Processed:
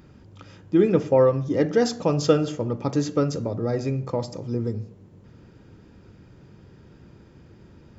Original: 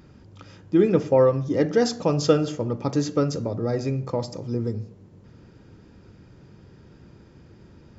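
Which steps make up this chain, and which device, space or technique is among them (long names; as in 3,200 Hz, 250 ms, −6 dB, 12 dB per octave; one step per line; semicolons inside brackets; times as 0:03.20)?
exciter from parts (in parallel at −12 dB: high-pass filter 3,800 Hz 12 dB per octave + soft clipping −25.5 dBFS, distortion −16 dB + high-pass filter 3,300 Hz 24 dB per octave)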